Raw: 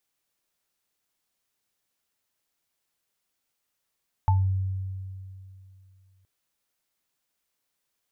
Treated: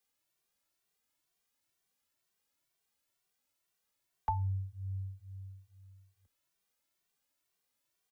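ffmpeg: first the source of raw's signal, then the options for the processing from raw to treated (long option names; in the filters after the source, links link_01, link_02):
-f lavfi -i "aevalsrc='0.141*pow(10,-3*t/2.7)*sin(2*PI*95.1*t)+0.1*pow(10,-3*t/0.23)*sin(2*PI*878*t)':duration=1.97:sample_rate=44100"
-filter_complex "[0:a]acrossover=split=140|210|430[link_01][link_02][link_03][link_04];[link_01]acompressor=threshold=-37dB:ratio=6[link_05];[link_05][link_02][link_03][link_04]amix=inputs=4:normalize=0,asplit=2[link_06][link_07];[link_07]adelay=2.1,afreqshift=2.1[link_08];[link_06][link_08]amix=inputs=2:normalize=1"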